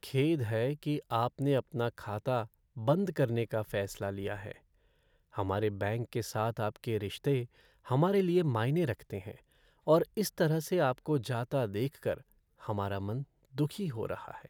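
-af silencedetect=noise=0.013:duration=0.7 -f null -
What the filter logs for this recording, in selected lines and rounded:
silence_start: 4.52
silence_end: 5.37 | silence_duration: 0.85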